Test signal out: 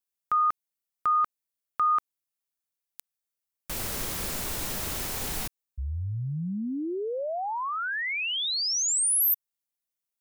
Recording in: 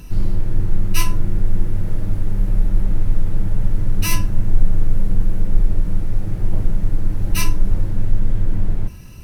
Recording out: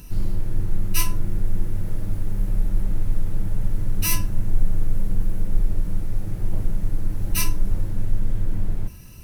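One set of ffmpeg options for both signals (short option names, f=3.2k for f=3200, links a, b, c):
-af "highshelf=f=7.1k:g=10,volume=-5dB"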